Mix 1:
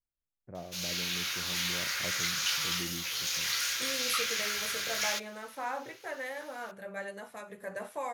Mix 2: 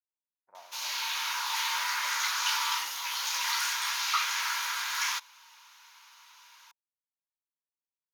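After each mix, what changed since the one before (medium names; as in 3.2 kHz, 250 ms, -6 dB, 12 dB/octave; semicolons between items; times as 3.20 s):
first voice -10.5 dB; second voice: muted; master: add resonant high-pass 940 Hz, resonance Q 11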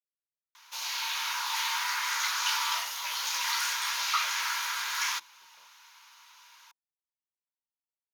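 speech: entry +2.20 s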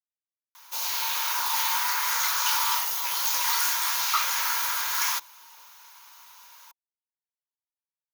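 background: remove band-pass filter 2.6 kHz, Q 0.64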